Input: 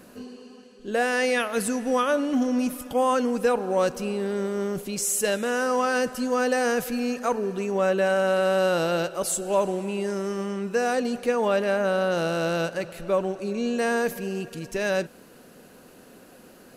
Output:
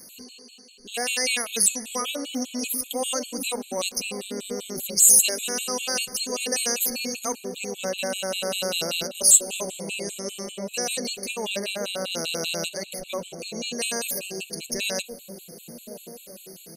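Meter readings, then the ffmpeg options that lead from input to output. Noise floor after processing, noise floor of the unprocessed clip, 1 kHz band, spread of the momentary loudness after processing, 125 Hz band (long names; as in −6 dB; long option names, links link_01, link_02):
−48 dBFS, −50 dBFS, −9.0 dB, 19 LU, −8.0 dB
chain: -filter_complex "[0:a]acrossover=split=740[link_01][link_02];[link_01]aecho=1:1:1061|2122|3183|4244|5305|6366|7427:0.531|0.292|0.161|0.0883|0.0486|0.0267|0.0147[link_03];[link_02]aexciter=amount=8.4:drive=5:freq=2400[link_04];[link_03][link_04]amix=inputs=2:normalize=0,afftfilt=real='re*gt(sin(2*PI*5.1*pts/sr)*(1-2*mod(floor(b*sr/1024/2200),2)),0)':imag='im*gt(sin(2*PI*5.1*pts/sr)*(1-2*mod(floor(b*sr/1024/2200),2)),0)':win_size=1024:overlap=0.75,volume=-6dB"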